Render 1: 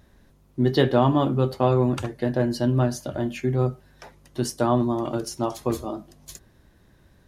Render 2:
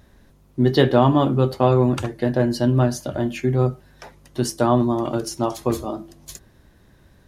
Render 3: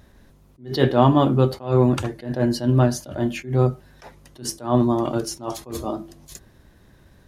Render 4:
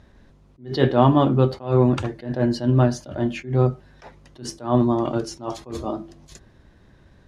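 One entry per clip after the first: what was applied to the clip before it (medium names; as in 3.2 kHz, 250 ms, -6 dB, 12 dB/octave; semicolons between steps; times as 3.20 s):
de-hum 166.8 Hz, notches 2; trim +3.5 dB
attacks held to a fixed rise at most 170 dB/s; trim +1 dB
distance through air 76 m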